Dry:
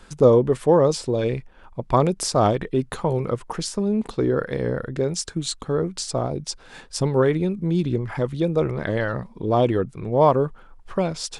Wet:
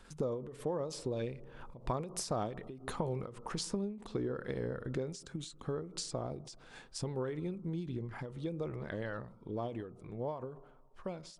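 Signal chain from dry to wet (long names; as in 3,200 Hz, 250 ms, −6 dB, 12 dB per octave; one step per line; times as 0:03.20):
source passing by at 0:03.01, 6 m/s, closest 4.9 metres
on a send at −16 dB: Chebyshev low-pass filter 1,400 Hz, order 8 + convolution reverb, pre-delay 3 ms
on the sum: downward compressor 6 to 1, threshold −37 dBFS, peak gain reduction 20 dB
every ending faded ahead of time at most 100 dB per second
level +3.5 dB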